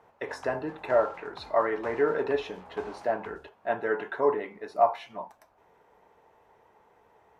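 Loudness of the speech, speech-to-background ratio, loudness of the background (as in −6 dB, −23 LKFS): −29.5 LKFS, 18.0 dB, −47.5 LKFS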